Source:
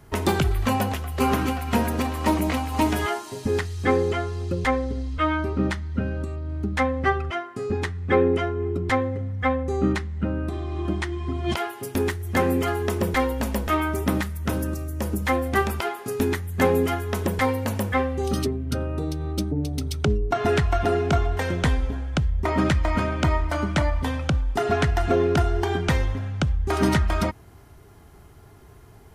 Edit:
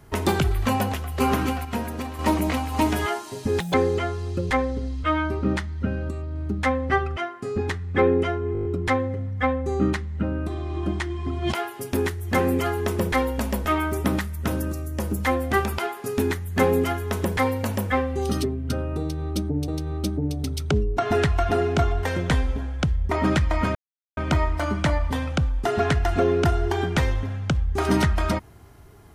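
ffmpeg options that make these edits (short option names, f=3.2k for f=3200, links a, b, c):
-filter_complex "[0:a]asplit=13[a][b][c][d][e][f][g][h][i][j][k][l][m];[a]atrim=end=1.652[n];[b]atrim=start=1.648:end=2.192,asetpts=PTS-STARTPTS,volume=-6dB[o];[c]atrim=start=2.188:end=3.604[p];[d]atrim=start=3.6:end=3.88,asetpts=PTS-STARTPTS,asetrate=87759,aresample=44100,atrim=end_sample=6205,asetpts=PTS-STARTPTS[q];[e]atrim=start=3.876:end=8.692[r];[f]atrim=start=8.668:end=8.692[s];[g]atrim=start=8.668:end=8.692[t];[h]atrim=start=8.668:end=8.692[u];[i]atrim=start=8.668:end=8.692[v];[j]atrim=start=8.668:end=8.692[w];[k]atrim=start=8.668:end=19.702[x];[l]atrim=start=19.018:end=23.09,asetpts=PTS-STARTPTS,afade=t=out:st=4.068:d=0.004:c=hsin,apad=pad_dur=0.42[y];[m]atrim=start=23.09,asetpts=PTS-STARTPTS,afade=t=in:d=0.004:c=hsin[z];[n][o]acrossfade=d=0.004:c1=hsin:c2=hsin[aa];[aa][p]acrossfade=d=0.004:c1=hsin:c2=hsin[ab];[ab][q]acrossfade=d=0.004:c1=hsin:c2=hsin[ac];[ac][r]acrossfade=d=0.004:c1=hsin:c2=hsin[ad];[ad][s]acrossfade=d=0.004:c1=hsin:c2=hsin[ae];[ae][t]acrossfade=d=0.004:c1=hsin:c2=hsin[af];[af][u]acrossfade=d=0.004:c1=hsin:c2=hsin[ag];[ag][v]acrossfade=d=0.004:c1=hsin:c2=hsin[ah];[ah][w]acrossfade=d=0.004:c1=hsin:c2=hsin[ai];[ai][x]acrossfade=d=0.004:c1=hsin:c2=hsin[aj];[y][z]concat=n=2:v=0:a=1[ak];[aj][ak]acrossfade=d=0.004:c1=hsin:c2=hsin"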